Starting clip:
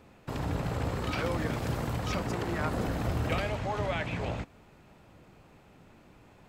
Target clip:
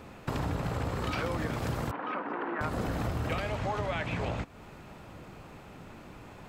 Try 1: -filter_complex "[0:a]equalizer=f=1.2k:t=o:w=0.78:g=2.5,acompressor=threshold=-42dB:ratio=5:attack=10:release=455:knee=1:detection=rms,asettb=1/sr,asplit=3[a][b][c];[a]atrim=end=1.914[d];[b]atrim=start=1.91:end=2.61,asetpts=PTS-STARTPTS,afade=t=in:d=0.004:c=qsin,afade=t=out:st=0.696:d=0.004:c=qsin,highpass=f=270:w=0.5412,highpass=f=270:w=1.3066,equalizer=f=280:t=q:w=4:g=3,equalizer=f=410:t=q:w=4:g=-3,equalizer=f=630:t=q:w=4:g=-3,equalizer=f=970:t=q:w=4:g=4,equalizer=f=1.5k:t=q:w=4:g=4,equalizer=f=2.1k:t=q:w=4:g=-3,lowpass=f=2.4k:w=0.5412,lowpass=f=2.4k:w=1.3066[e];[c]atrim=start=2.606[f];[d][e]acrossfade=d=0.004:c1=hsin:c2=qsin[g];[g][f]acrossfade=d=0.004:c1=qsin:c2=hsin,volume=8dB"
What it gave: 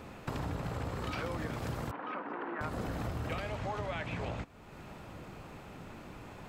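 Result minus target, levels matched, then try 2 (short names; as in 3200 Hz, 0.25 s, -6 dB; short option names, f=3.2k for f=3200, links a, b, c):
compressor: peak gain reduction +5 dB
-filter_complex "[0:a]equalizer=f=1.2k:t=o:w=0.78:g=2.5,acompressor=threshold=-36dB:ratio=5:attack=10:release=455:knee=1:detection=rms,asettb=1/sr,asplit=3[a][b][c];[a]atrim=end=1.914[d];[b]atrim=start=1.91:end=2.61,asetpts=PTS-STARTPTS,afade=t=in:d=0.004:c=qsin,afade=t=out:st=0.696:d=0.004:c=qsin,highpass=f=270:w=0.5412,highpass=f=270:w=1.3066,equalizer=f=280:t=q:w=4:g=3,equalizer=f=410:t=q:w=4:g=-3,equalizer=f=630:t=q:w=4:g=-3,equalizer=f=970:t=q:w=4:g=4,equalizer=f=1.5k:t=q:w=4:g=4,equalizer=f=2.1k:t=q:w=4:g=-3,lowpass=f=2.4k:w=0.5412,lowpass=f=2.4k:w=1.3066[e];[c]atrim=start=2.606[f];[d][e]acrossfade=d=0.004:c1=hsin:c2=qsin[g];[g][f]acrossfade=d=0.004:c1=qsin:c2=hsin,volume=8dB"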